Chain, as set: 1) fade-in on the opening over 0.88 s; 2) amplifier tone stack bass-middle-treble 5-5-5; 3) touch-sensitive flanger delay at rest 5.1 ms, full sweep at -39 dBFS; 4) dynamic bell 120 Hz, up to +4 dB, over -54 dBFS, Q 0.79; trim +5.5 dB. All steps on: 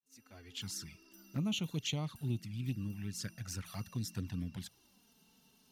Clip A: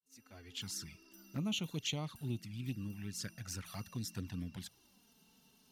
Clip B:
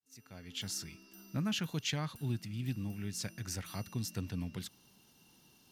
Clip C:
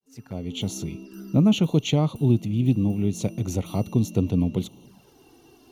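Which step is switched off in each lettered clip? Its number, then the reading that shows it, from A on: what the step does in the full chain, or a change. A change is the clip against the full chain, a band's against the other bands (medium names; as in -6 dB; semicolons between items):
4, crest factor change +2.5 dB; 3, 1 kHz band +2.5 dB; 2, 500 Hz band +10.5 dB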